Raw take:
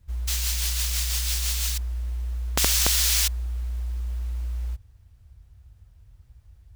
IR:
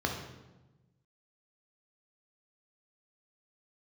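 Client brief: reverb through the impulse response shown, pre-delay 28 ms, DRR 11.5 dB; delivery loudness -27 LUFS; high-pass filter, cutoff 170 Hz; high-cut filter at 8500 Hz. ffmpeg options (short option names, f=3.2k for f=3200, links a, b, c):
-filter_complex "[0:a]highpass=170,lowpass=8.5k,asplit=2[a][b];[1:a]atrim=start_sample=2205,adelay=28[c];[b][c]afir=irnorm=-1:irlink=0,volume=-19.5dB[d];[a][d]amix=inputs=2:normalize=0,volume=-1dB"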